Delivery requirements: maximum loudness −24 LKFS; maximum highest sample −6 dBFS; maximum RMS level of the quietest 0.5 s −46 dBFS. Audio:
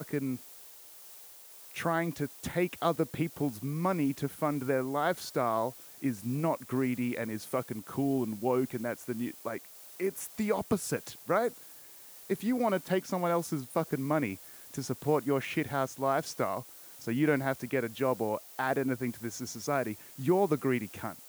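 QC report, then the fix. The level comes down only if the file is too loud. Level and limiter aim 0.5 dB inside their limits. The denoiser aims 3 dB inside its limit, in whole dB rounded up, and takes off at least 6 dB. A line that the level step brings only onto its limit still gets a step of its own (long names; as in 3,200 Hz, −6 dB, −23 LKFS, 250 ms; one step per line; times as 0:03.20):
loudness −32.5 LKFS: in spec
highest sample −12.5 dBFS: in spec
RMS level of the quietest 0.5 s −51 dBFS: in spec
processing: no processing needed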